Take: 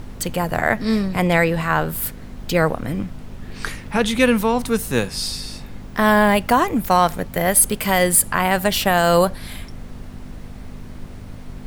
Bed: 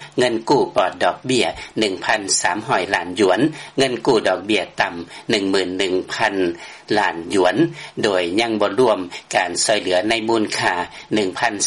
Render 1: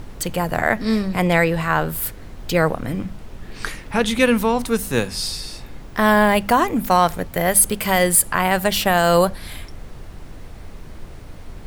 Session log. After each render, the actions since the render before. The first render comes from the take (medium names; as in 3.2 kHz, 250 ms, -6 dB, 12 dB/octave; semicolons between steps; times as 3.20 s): de-hum 50 Hz, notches 5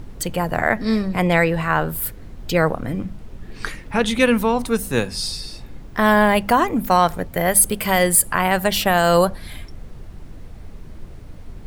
noise reduction 6 dB, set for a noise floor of -38 dBFS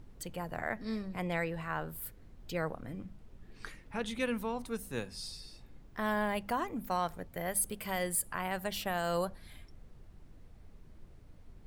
trim -17.5 dB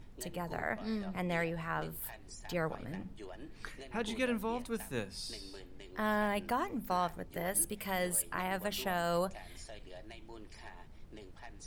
add bed -34 dB